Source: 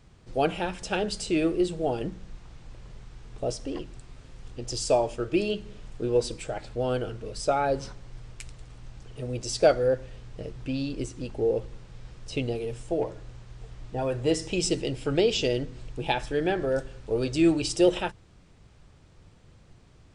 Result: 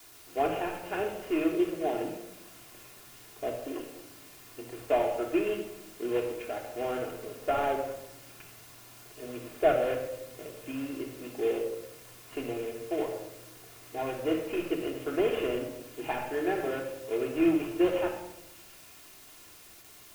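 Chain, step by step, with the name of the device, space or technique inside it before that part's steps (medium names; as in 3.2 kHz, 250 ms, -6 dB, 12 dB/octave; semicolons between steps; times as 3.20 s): army field radio (band-pass 330–3200 Hz; CVSD coder 16 kbps; white noise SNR 19 dB); feedback echo behind a high-pass 734 ms, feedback 68%, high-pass 3.2 kHz, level -15.5 dB; gate with hold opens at -40 dBFS; simulated room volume 3300 m³, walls furnished, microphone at 3.2 m; trim -4 dB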